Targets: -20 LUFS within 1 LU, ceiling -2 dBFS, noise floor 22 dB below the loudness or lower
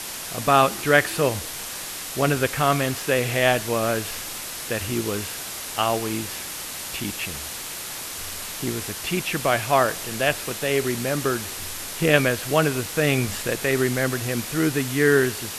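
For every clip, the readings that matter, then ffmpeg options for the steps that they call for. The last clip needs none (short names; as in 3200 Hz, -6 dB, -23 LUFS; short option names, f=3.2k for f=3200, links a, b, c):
noise floor -34 dBFS; noise floor target -46 dBFS; loudness -23.5 LUFS; peak -2.0 dBFS; loudness target -20.0 LUFS
-> -af "afftdn=nr=12:nf=-34"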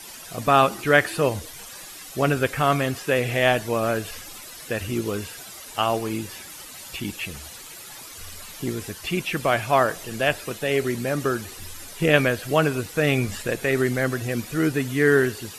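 noise floor -41 dBFS; noise floor target -46 dBFS
-> -af "afftdn=nr=6:nf=-41"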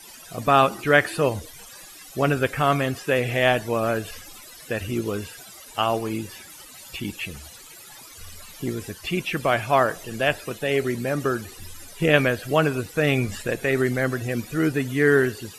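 noise floor -44 dBFS; noise floor target -46 dBFS
-> -af "afftdn=nr=6:nf=-44"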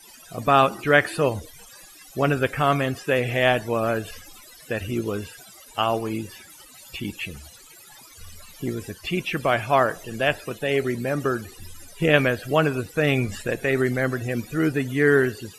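noise floor -48 dBFS; loudness -23.5 LUFS; peak -2.5 dBFS; loudness target -20.0 LUFS
-> -af "volume=3.5dB,alimiter=limit=-2dB:level=0:latency=1"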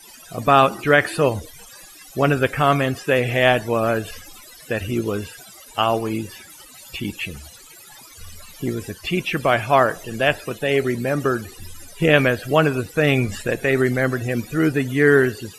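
loudness -20.0 LUFS; peak -2.0 dBFS; noise floor -44 dBFS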